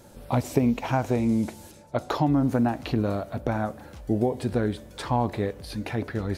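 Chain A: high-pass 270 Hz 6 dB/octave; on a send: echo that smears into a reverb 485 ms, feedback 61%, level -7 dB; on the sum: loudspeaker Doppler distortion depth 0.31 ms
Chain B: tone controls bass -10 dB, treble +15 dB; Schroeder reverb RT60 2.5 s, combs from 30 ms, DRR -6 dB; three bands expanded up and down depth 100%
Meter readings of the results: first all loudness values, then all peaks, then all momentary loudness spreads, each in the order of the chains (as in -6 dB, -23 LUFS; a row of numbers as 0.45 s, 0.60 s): -29.0 LUFS, -21.5 LUFS; -9.5 dBFS, -4.0 dBFS; 6 LU, 12 LU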